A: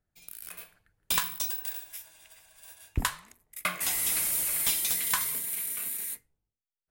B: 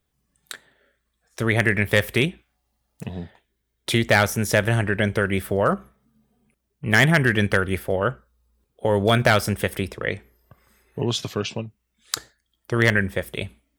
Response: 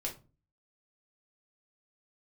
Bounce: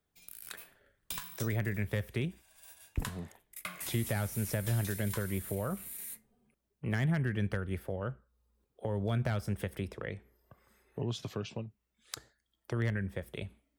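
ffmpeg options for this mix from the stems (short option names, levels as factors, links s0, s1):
-filter_complex "[0:a]volume=0.596[s0];[1:a]equalizer=f=550:w=0.42:g=4.5,volume=0.355[s1];[s0][s1]amix=inputs=2:normalize=0,acrossover=split=190[s2][s3];[s3]acompressor=threshold=0.01:ratio=3[s4];[s2][s4]amix=inputs=2:normalize=0"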